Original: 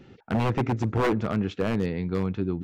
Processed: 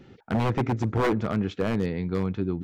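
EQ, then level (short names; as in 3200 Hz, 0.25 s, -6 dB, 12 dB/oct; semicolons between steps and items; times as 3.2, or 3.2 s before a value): notch 2700 Hz, Q 18; 0.0 dB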